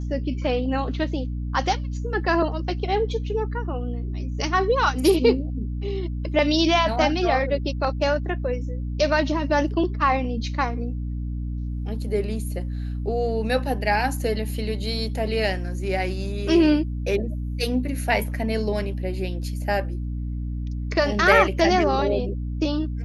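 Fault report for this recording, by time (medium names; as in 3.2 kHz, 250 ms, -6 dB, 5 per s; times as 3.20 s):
hum 60 Hz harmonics 5 -28 dBFS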